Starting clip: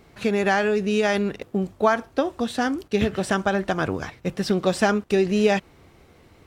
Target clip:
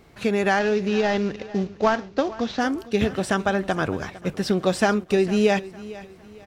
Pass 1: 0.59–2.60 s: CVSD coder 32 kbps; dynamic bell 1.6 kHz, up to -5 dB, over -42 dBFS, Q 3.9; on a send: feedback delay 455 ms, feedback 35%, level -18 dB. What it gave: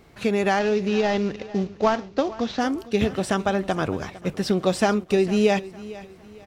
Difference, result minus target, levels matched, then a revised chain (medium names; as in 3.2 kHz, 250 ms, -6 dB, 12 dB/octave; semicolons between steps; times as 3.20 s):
2 kHz band -2.5 dB
0.59–2.60 s: CVSD coder 32 kbps; on a send: feedback delay 455 ms, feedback 35%, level -18 dB